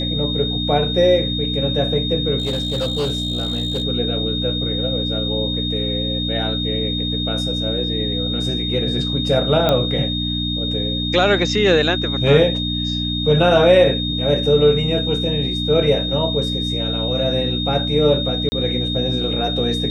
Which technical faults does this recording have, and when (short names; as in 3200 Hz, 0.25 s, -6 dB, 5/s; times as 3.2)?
hum 60 Hz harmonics 5 -24 dBFS
tone 3700 Hz -23 dBFS
2.38–3.84 clipped -17 dBFS
9.69 pop -5 dBFS
18.49–18.52 gap 30 ms